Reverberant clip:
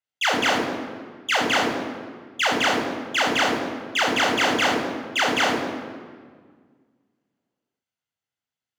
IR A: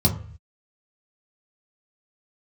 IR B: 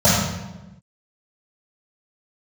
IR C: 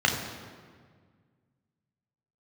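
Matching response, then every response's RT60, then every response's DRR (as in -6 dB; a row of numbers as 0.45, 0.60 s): C; 0.50, 1.1, 1.7 s; -1.5, -17.5, 0.0 dB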